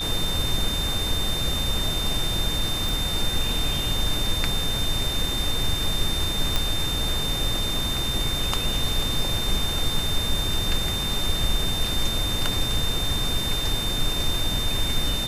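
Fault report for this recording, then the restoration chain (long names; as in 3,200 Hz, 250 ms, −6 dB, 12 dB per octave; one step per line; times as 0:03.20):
whistle 3,600 Hz −27 dBFS
0:02.89: click
0:06.56: click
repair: click removal
notch filter 3,600 Hz, Q 30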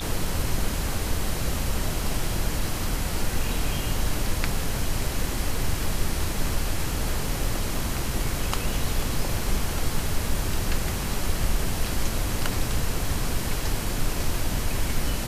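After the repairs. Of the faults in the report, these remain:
none of them is left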